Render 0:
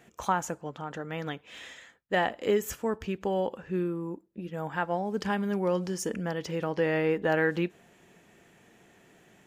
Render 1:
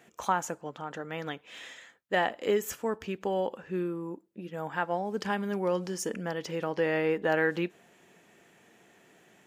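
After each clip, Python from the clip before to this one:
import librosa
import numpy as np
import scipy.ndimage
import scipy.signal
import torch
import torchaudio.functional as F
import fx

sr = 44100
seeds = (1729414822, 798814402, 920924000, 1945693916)

y = fx.highpass(x, sr, hz=220.0, slope=6)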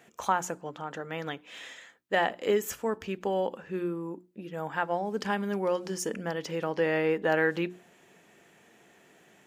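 y = fx.hum_notches(x, sr, base_hz=60, count=6)
y = y * librosa.db_to_amplitude(1.0)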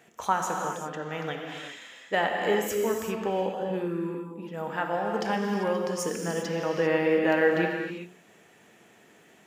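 y = fx.rev_gated(x, sr, seeds[0], gate_ms=420, shape='flat', drr_db=1.0)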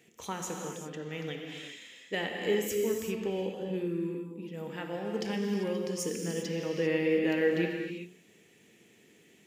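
y = fx.band_shelf(x, sr, hz=980.0, db=-12.0, octaves=1.7)
y = y * librosa.db_to_amplitude(-2.0)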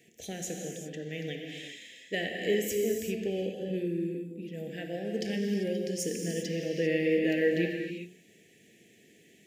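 y = scipy.signal.sosfilt(scipy.signal.cheby1(3, 1.0, [700.0, 1700.0], 'bandstop', fs=sr, output='sos'), x)
y = y * librosa.db_to_amplitude(1.5)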